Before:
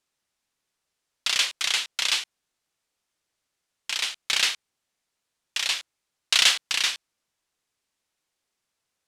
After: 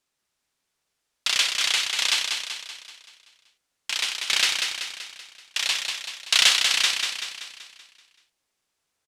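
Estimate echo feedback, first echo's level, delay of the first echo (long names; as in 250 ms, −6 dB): 52%, −5.0 dB, 191 ms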